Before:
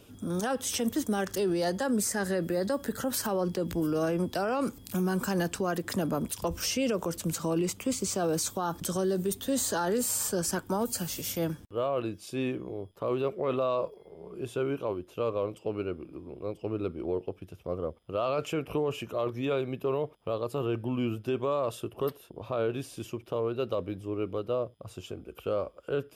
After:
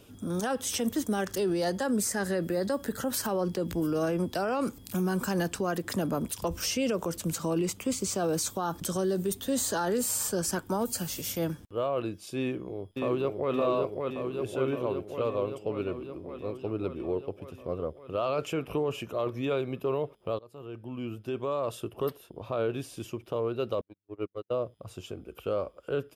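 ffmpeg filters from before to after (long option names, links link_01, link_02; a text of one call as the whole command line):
ffmpeg -i in.wav -filter_complex "[0:a]asplit=2[link_01][link_02];[link_02]afade=type=in:start_time=12.39:duration=0.01,afade=type=out:start_time=13.53:duration=0.01,aecho=0:1:570|1140|1710|2280|2850|3420|3990|4560|5130|5700|6270|6840:0.707946|0.530959|0.39822|0.298665|0.223998|0.167999|0.125999|0.0944994|0.0708745|0.0531559|0.0398669|0.0299002[link_03];[link_01][link_03]amix=inputs=2:normalize=0,asettb=1/sr,asplit=3[link_04][link_05][link_06];[link_04]atrim=end=23.814[link_07];[link_05]atrim=start=23.81:end=24.56,asetpts=PTS-STARTPTS,afade=type=in:duration=0.004:curve=qsin,afade=type=out:start_time=0.746:duration=0.004:curve=qsin,agate=range=-50dB:threshold=-31dB:ratio=16:release=100:detection=peak[link_08];[link_06]atrim=start=24.556[link_09];[link_07][link_08]acrossfade=duration=0.004:curve1=hsin:curve2=qsin[link_10];[link_10][link_09]acrossfade=duration=0.004:curve1=qsin:curve2=hsin,asplit=2[link_11][link_12];[link_11]atrim=end=20.39,asetpts=PTS-STARTPTS,afade=type=out:start_time=20.386:duration=0.004:curve=hsin:silence=0.0749894[link_13];[link_12]atrim=start=20.39,asetpts=PTS-STARTPTS,afade=type=in:duration=1.44:silence=0.0749894[link_14];[link_13][link_14]concat=n=2:v=0:a=1" out.wav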